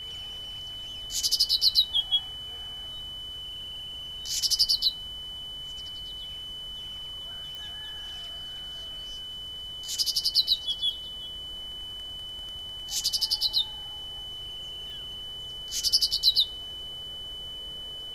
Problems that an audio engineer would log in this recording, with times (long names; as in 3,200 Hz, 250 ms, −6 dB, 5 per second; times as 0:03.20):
whistle 3,000 Hz −36 dBFS
0:07.55: click
0:14.90: click